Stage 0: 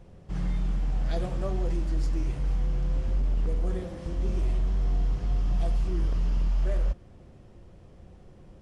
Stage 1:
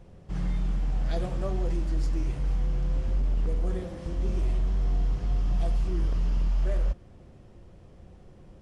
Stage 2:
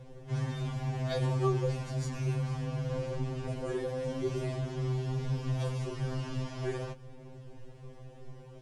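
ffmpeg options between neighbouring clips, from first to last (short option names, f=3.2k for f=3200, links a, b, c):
-af anull
-af "bandreject=f=1.3k:w=30,afftfilt=real='re*2.45*eq(mod(b,6),0)':imag='im*2.45*eq(mod(b,6),0)':win_size=2048:overlap=0.75,volume=5.5dB"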